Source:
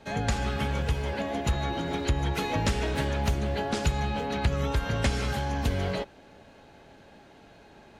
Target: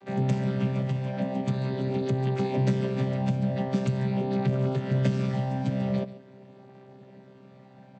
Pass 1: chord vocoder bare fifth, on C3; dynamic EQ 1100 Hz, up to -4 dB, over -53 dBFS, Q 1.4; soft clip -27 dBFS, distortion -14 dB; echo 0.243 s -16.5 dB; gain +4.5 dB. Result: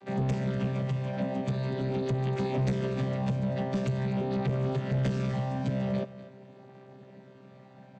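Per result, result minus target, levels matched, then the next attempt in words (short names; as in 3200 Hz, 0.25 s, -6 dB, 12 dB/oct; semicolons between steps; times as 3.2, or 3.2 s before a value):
echo 0.105 s late; soft clip: distortion +16 dB
chord vocoder bare fifth, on C3; dynamic EQ 1100 Hz, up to -4 dB, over -53 dBFS, Q 1.4; soft clip -27 dBFS, distortion -14 dB; echo 0.138 s -16.5 dB; gain +4.5 dB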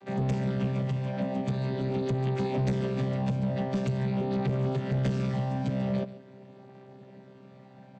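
soft clip: distortion +16 dB
chord vocoder bare fifth, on C3; dynamic EQ 1100 Hz, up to -4 dB, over -53 dBFS, Q 1.4; soft clip -16 dBFS, distortion -30 dB; echo 0.138 s -16.5 dB; gain +4.5 dB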